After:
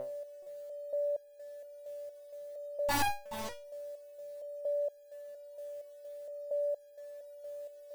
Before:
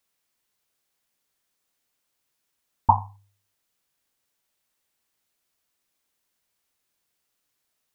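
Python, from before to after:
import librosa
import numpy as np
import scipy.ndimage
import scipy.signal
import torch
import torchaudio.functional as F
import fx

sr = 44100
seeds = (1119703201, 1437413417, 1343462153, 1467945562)

p1 = fx.notch(x, sr, hz=1200.0, q=8.7)
p2 = fx.over_compress(p1, sr, threshold_db=-22.0, ratio=-1.0)
p3 = p1 + F.gain(torch.from_numpy(p2), 1.0).numpy()
p4 = fx.fuzz(p3, sr, gain_db=33.0, gate_db=-36.0)
p5 = fx.quant_dither(p4, sr, seeds[0], bits=12, dither='triangular')
p6 = p5 + 10.0 ** (-33.0 / 20.0) * np.sin(2.0 * np.pi * 580.0 * np.arange(len(p5)) / sr)
p7 = fx.fold_sine(p6, sr, drive_db=4, ceiling_db=-19.5)
p8 = p7 + fx.echo_single(p7, sr, ms=425, db=-12.5, dry=0)
p9 = fx.resonator_held(p8, sr, hz=4.3, low_hz=130.0, high_hz=810.0)
y = F.gain(torch.from_numpy(p9), 8.5).numpy()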